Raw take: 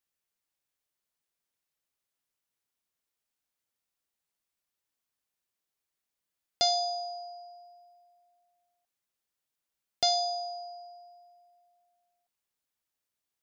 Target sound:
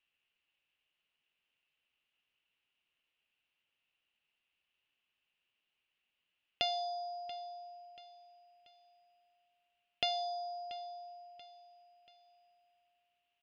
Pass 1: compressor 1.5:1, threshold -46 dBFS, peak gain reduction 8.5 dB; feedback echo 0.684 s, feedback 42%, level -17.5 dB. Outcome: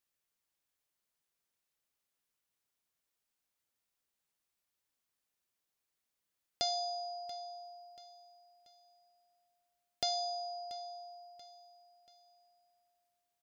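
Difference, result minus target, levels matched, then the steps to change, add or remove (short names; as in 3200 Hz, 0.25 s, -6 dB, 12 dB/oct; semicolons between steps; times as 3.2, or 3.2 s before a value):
2000 Hz band -11.5 dB
add after compressor: synth low-pass 2800 Hz, resonance Q 8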